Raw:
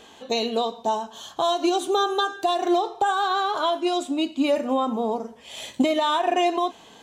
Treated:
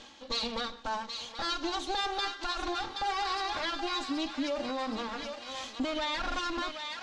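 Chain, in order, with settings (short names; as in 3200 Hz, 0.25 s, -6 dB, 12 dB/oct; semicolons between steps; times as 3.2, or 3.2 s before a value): minimum comb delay 3.6 ms; thinning echo 0.775 s, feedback 61%, high-pass 1100 Hz, level -7 dB; limiter -18 dBFS, peak gain reduction 6.5 dB; synth low-pass 5200 Hz, resonance Q 1.8; reverse; upward compressor, threshold -31 dBFS; reverse; gain -6.5 dB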